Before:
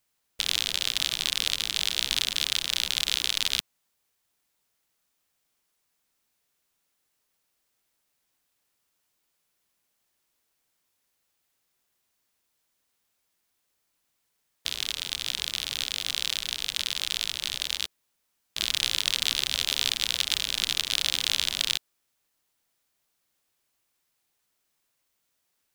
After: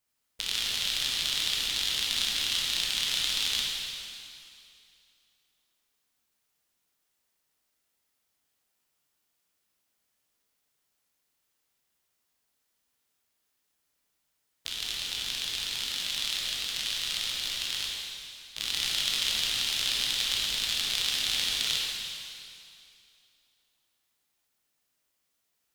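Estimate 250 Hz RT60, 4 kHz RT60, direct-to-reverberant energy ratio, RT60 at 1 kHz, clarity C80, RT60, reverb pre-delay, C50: 2.6 s, 2.4 s, -3.5 dB, 2.5 s, 0.5 dB, 2.5 s, 15 ms, -1.0 dB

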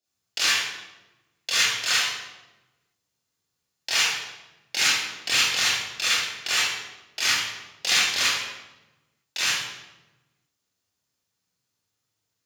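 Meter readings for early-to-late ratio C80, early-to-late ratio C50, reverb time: 1.5 dB, -3.0 dB, 1.1 s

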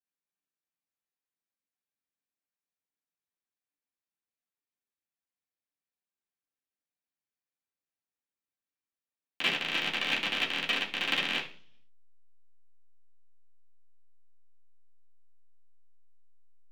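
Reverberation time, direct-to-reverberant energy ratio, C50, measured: 0.45 s, -6.5 dB, 10.0 dB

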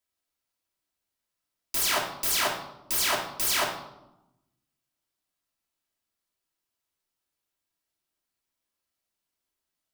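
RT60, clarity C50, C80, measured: 0.90 s, 6.0 dB, 9.0 dB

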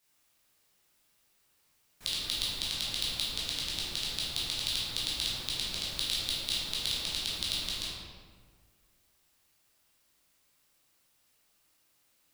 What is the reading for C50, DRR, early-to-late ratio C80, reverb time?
-1.5 dB, -8.0 dB, 1.0 dB, 1.7 s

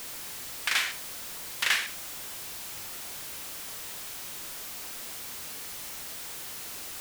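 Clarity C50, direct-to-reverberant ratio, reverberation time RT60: 13.0 dB, 10.0 dB, no single decay rate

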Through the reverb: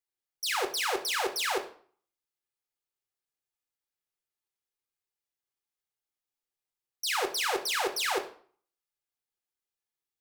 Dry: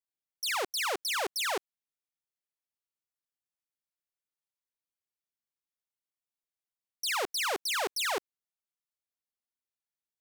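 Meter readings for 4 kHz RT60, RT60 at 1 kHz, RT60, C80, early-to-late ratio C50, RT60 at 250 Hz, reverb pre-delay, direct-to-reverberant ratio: 0.40 s, 0.50 s, 0.50 s, 15.5 dB, 12.0 dB, 0.50 s, 8 ms, 4.5 dB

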